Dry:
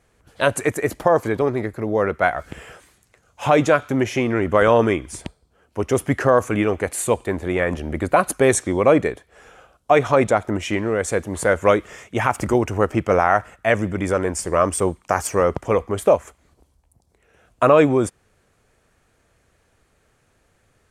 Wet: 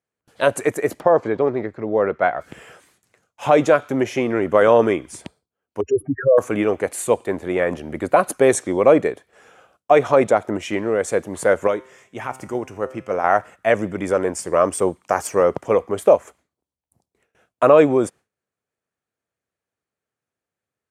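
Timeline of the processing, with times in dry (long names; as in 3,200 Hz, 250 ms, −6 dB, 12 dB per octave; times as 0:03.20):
0:01.00–0:02.41: high-frequency loss of the air 140 metres
0:05.81–0:06.38: expanding power law on the bin magnitudes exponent 3.9
0:11.67–0:13.24: tuned comb filter 130 Hz, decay 0.75 s
whole clip: high-pass filter 130 Hz 12 dB per octave; noise gate with hold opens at −44 dBFS; dynamic equaliser 530 Hz, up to +5 dB, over −27 dBFS, Q 0.86; level −2.5 dB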